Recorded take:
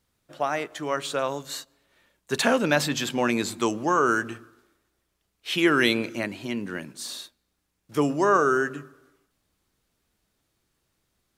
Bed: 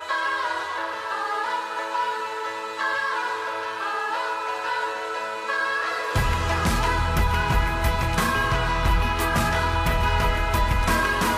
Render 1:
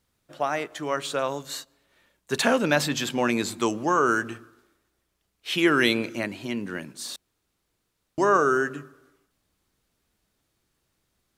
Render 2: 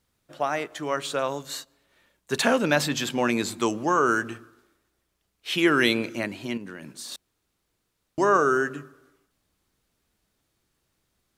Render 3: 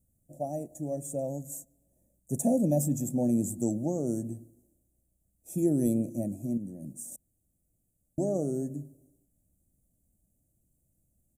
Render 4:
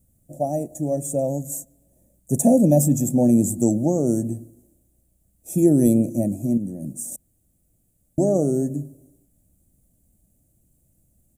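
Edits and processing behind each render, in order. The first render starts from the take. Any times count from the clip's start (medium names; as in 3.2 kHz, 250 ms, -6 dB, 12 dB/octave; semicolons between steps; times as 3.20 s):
7.16–8.18 s: room tone
6.57–7.12 s: compression, threshold -34 dBFS
inverse Chebyshev band-stop 970–4700 Hz, stop band 40 dB; comb 1.2 ms, depth 78%
trim +10 dB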